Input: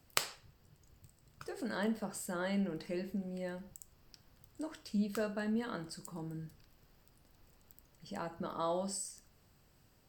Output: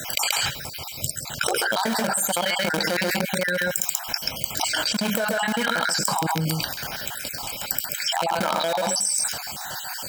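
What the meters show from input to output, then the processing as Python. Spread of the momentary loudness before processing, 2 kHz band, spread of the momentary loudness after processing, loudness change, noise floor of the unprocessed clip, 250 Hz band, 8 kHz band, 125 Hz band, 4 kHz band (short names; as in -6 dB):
16 LU, +21.5 dB, 7 LU, +15.5 dB, -67 dBFS, +8.0 dB, +21.5 dB, +12.5 dB, +22.5 dB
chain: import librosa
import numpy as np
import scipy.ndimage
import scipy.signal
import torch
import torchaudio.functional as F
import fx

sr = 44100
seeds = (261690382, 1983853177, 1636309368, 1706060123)

p1 = fx.spec_dropout(x, sr, seeds[0], share_pct=53)
p2 = fx.high_shelf(p1, sr, hz=4400.0, db=-2.5)
p3 = np.where(np.abs(p2) >= 10.0 ** (-35.5 / 20.0), p2, 0.0)
p4 = p2 + (p3 * 10.0 ** (-4.0 / 20.0))
p5 = fx.highpass(p4, sr, hz=1200.0, slope=6)
p6 = p5 + 0.53 * np.pad(p5, (int(1.3 * sr / 1000.0), 0))[:len(p5)]
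p7 = p6 + fx.echo_single(p6, sr, ms=133, db=-10.5, dry=0)
p8 = fx.env_flatten(p7, sr, amount_pct=100)
y = p8 * 10.0 ** (4.0 / 20.0)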